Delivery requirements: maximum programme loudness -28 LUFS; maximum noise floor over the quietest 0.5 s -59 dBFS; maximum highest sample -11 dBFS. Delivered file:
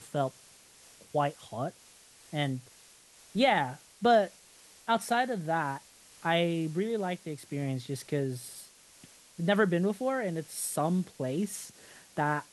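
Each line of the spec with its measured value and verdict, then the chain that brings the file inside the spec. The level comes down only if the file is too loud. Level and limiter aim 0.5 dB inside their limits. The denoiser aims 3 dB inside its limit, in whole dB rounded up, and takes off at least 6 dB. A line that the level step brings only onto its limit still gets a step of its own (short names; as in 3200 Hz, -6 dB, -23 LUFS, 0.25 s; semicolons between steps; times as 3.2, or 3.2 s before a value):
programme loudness -31.0 LUFS: OK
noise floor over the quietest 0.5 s -57 dBFS: fail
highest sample -12.0 dBFS: OK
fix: denoiser 6 dB, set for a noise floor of -57 dBFS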